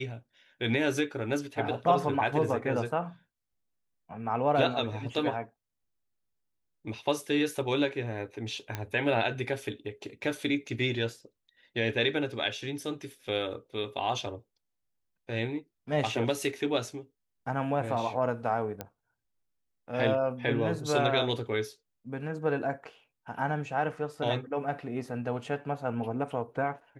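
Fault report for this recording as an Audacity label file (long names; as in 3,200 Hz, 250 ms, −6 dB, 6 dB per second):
8.750000	8.750000	click −18 dBFS
18.810000	18.810000	click −20 dBFS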